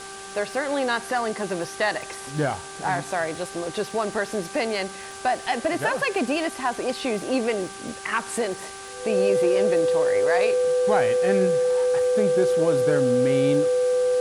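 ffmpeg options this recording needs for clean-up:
-af "adeclick=t=4,bandreject=f=391.1:t=h:w=4,bandreject=f=782.2:t=h:w=4,bandreject=f=1.1733k:t=h:w=4,bandreject=f=1.5644k:t=h:w=4,bandreject=f=500:w=30,afwtdn=0.011"

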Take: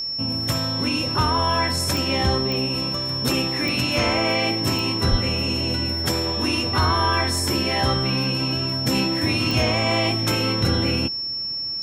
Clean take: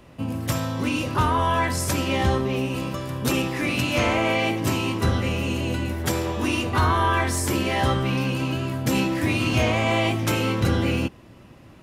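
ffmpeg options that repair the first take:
-filter_complex "[0:a]adeclick=t=4,bandreject=f=5.4k:w=30,asplit=3[a][b][c];[a]afade=t=out:st=5.1:d=0.02[d];[b]highpass=f=140:w=0.5412,highpass=f=140:w=1.3066,afade=t=in:st=5.1:d=0.02,afade=t=out:st=5.22:d=0.02[e];[c]afade=t=in:st=5.22:d=0.02[f];[d][e][f]amix=inputs=3:normalize=0"

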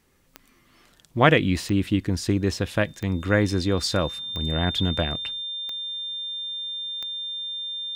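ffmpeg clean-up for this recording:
-af "adeclick=t=4,bandreject=f=3.6k:w=30"

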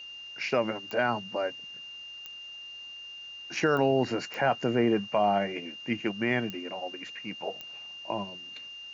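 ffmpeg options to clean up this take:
-af "adeclick=t=4,bandreject=f=2.8k:w=30,agate=range=-21dB:threshold=-36dB"

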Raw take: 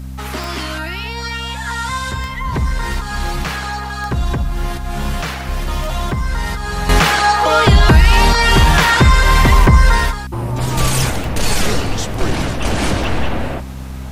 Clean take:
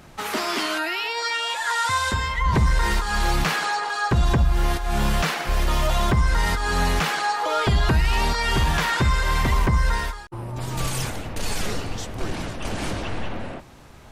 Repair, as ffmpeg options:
-af "adeclick=t=4,bandreject=f=65.4:t=h:w=4,bandreject=f=130.8:t=h:w=4,bandreject=f=196.2:t=h:w=4,bandreject=f=261.6:t=h:w=4,agate=range=-21dB:threshold=-17dB,asetnsamples=n=441:p=0,asendcmd='6.89 volume volume -10.5dB',volume=0dB"

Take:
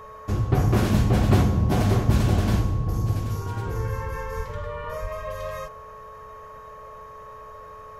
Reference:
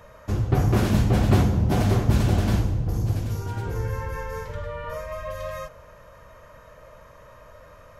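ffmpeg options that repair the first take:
-filter_complex "[0:a]bandreject=f=433.5:t=h:w=4,bandreject=f=867:t=h:w=4,bandreject=f=1.3005k:t=h:w=4,bandreject=f=1.734k:t=h:w=4,bandreject=f=1.1k:w=30,asplit=3[a][b][c];[a]afade=t=out:st=4.36:d=0.02[d];[b]highpass=f=140:w=0.5412,highpass=f=140:w=1.3066,afade=t=in:st=4.36:d=0.02,afade=t=out:st=4.48:d=0.02[e];[c]afade=t=in:st=4.48:d=0.02[f];[d][e][f]amix=inputs=3:normalize=0,asplit=3[g][h][i];[g]afade=t=out:st=5.01:d=0.02[j];[h]highpass=f=140:w=0.5412,highpass=f=140:w=1.3066,afade=t=in:st=5.01:d=0.02,afade=t=out:st=5.13:d=0.02[k];[i]afade=t=in:st=5.13:d=0.02[l];[j][k][l]amix=inputs=3:normalize=0"

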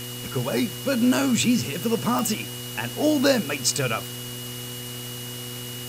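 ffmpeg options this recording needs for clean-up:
-af "adeclick=t=4,bandreject=f=122.2:t=h:w=4,bandreject=f=244.4:t=h:w=4,bandreject=f=366.6:t=h:w=4,bandreject=f=488.8:t=h:w=4,bandreject=f=2.9k:w=30,afftdn=nr=30:nf=-35"

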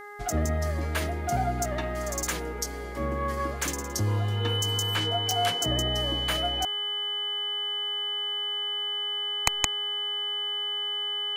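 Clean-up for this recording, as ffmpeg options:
-af "adeclick=t=4,bandreject=f=412.1:t=h:w=4,bandreject=f=824.2:t=h:w=4,bandreject=f=1.2363k:t=h:w=4,bandreject=f=1.6484k:t=h:w=4,bandreject=f=2.0605k:t=h:w=4,bandreject=f=3k:w=30,agate=range=-21dB:threshold=-24dB"

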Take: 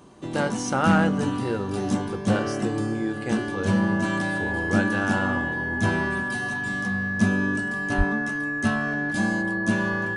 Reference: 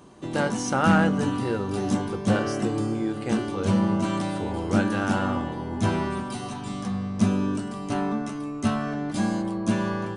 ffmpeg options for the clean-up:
-filter_complex "[0:a]bandreject=f=1.7k:w=30,asplit=3[a][b][c];[a]afade=t=out:st=7.97:d=0.02[d];[b]highpass=f=140:w=0.5412,highpass=f=140:w=1.3066,afade=t=in:st=7.97:d=0.02,afade=t=out:st=8.09:d=0.02[e];[c]afade=t=in:st=8.09:d=0.02[f];[d][e][f]amix=inputs=3:normalize=0"

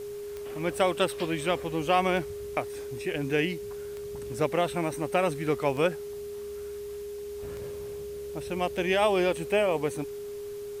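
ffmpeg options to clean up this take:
-af "adeclick=t=4,bandreject=f=410:w=30,afwtdn=0.0022"

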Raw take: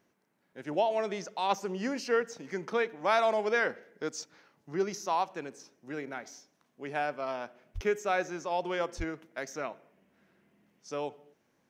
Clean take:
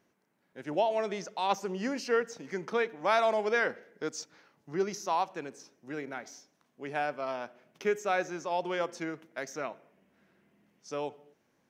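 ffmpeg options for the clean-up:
-filter_complex "[0:a]asplit=3[a][b][c];[a]afade=t=out:st=7.74:d=0.02[d];[b]highpass=f=140:w=0.5412,highpass=f=140:w=1.3066,afade=t=in:st=7.74:d=0.02,afade=t=out:st=7.86:d=0.02[e];[c]afade=t=in:st=7.86:d=0.02[f];[d][e][f]amix=inputs=3:normalize=0,asplit=3[g][h][i];[g]afade=t=out:st=8.97:d=0.02[j];[h]highpass=f=140:w=0.5412,highpass=f=140:w=1.3066,afade=t=in:st=8.97:d=0.02,afade=t=out:st=9.09:d=0.02[k];[i]afade=t=in:st=9.09:d=0.02[l];[j][k][l]amix=inputs=3:normalize=0"

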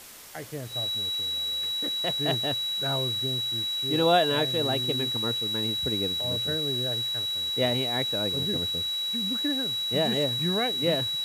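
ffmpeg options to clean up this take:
-af "bandreject=f=3.9k:w=30,afwtdn=0.0056"

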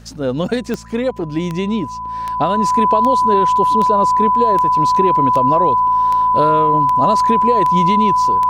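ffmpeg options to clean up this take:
-af "adeclick=t=4,bandreject=f=55.9:t=h:w=4,bandreject=f=111.8:t=h:w=4,bandreject=f=167.7:t=h:w=4,bandreject=f=223.6:t=h:w=4,bandreject=f=1k:w=30"

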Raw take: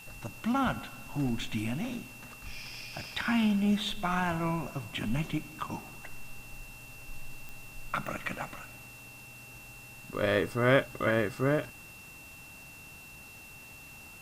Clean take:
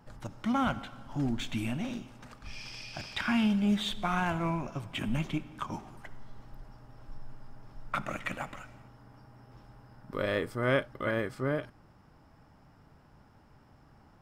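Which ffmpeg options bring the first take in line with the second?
-af "adeclick=t=4,bandreject=f=2.7k:w=30,afwtdn=0.002,asetnsamples=n=441:p=0,asendcmd='10.22 volume volume -3.5dB',volume=0dB"

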